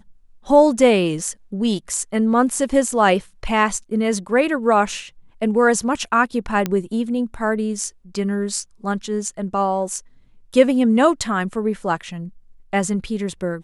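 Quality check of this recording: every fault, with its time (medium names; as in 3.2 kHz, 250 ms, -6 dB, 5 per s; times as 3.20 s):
6.66 s: pop -8 dBFS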